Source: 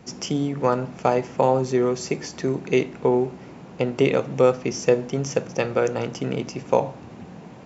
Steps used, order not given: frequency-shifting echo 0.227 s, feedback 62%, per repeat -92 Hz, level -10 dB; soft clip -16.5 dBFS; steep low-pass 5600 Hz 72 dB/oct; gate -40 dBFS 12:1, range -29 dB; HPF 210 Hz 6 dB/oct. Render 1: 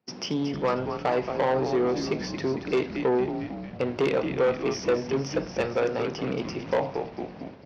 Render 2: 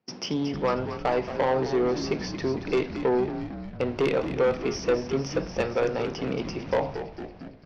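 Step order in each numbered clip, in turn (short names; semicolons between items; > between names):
steep low-pass > gate > frequency-shifting echo > soft clip > HPF; steep low-pass > soft clip > HPF > gate > frequency-shifting echo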